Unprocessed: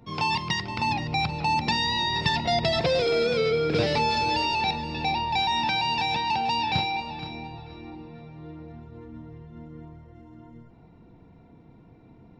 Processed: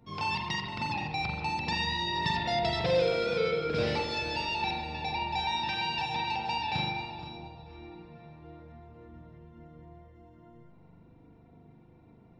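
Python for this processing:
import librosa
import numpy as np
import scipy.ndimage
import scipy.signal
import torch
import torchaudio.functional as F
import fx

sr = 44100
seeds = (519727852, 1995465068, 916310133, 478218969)

y = fx.peak_eq(x, sr, hz=2100.0, db=-8.0, octaves=0.86, at=(7.11, 7.68))
y = fx.rev_spring(y, sr, rt60_s=1.1, pass_ms=(40,), chirp_ms=40, drr_db=0.0)
y = y * librosa.db_to_amplitude(-7.5)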